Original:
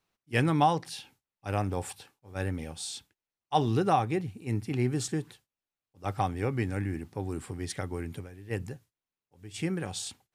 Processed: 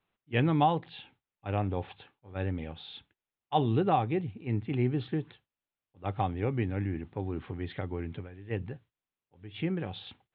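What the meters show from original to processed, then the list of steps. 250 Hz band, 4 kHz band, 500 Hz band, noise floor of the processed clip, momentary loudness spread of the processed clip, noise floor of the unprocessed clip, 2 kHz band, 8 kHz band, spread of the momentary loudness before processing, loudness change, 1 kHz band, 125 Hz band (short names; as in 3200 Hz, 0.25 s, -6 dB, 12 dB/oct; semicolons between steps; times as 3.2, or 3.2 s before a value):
0.0 dB, -3.5 dB, -0.5 dB, under -85 dBFS, 19 LU, under -85 dBFS, -3.5 dB, under -40 dB, 16 LU, -0.5 dB, -1.5 dB, 0.0 dB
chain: steep low-pass 3700 Hz 72 dB/oct; dynamic EQ 1500 Hz, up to -5 dB, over -46 dBFS, Q 1.1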